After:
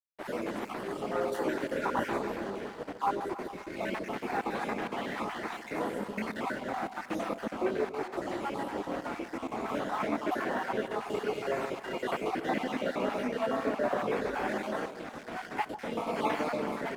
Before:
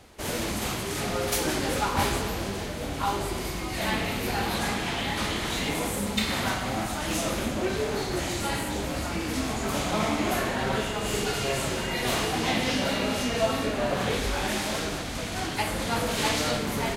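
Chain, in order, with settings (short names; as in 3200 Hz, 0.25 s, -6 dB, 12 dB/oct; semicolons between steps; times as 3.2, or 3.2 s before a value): random spectral dropouts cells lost 36%; three-band isolator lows -23 dB, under 200 Hz, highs -20 dB, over 2100 Hz; crossover distortion -47.5 dBFS; echo with dull and thin repeats by turns 0.144 s, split 930 Hz, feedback 65%, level -9.5 dB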